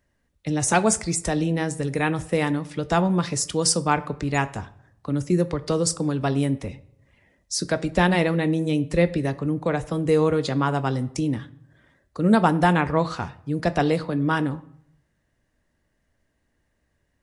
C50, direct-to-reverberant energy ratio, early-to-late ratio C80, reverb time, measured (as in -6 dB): 18.5 dB, 11.5 dB, 21.0 dB, 0.70 s